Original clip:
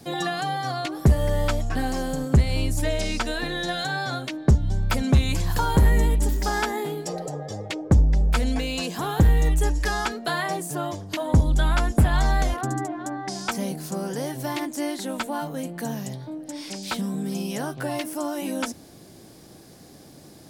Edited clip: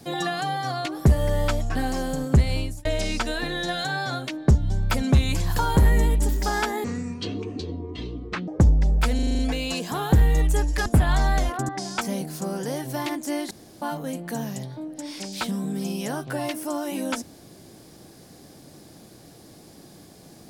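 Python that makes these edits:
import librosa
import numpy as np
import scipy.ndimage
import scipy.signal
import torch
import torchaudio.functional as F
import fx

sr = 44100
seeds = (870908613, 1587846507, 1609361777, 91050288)

y = fx.edit(x, sr, fx.fade_out_span(start_s=2.52, length_s=0.33),
    fx.speed_span(start_s=6.84, length_s=0.95, speed=0.58),
    fx.stutter(start_s=8.46, slice_s=0.04, count=7),
    fx.cut(start_s=9.93, length_s=1.97),
    fx.cut(start_s=12.73, length_s=0.46),
    fx.room_tone_fill(start_s=15.01, length_s=0.31), tone=tone)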